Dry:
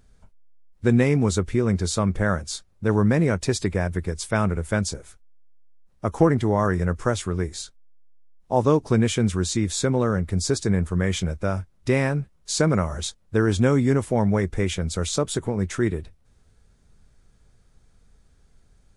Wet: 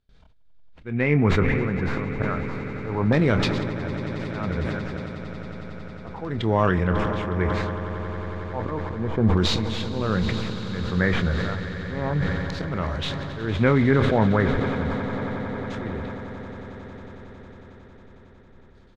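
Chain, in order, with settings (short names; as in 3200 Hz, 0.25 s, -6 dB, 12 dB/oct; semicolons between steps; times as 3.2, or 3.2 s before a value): tracing distortion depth 0.11 ms; gate with hold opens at -48 dBFS; auto swell 0.354 s; LFO low-pass saw down 0.32 Hz 850–3900 Hz; wow and flutter 26 cents; doubler 27 ms -12.5 dB; swelling echo 91 ms, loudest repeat 8, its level -17 dB; sustainer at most 23 dB/s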